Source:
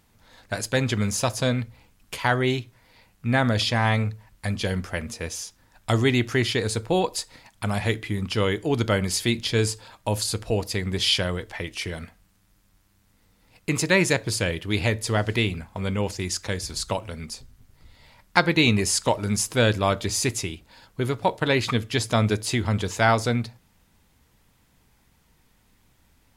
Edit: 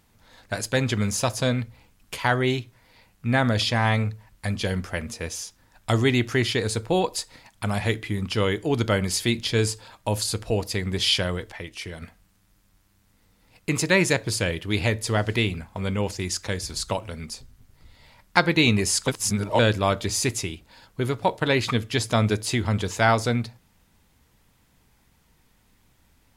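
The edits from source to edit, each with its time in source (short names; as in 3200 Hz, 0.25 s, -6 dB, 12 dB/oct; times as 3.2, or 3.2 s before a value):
11.52–12.02 gain -4.5 dB
19.08–19.59 reverse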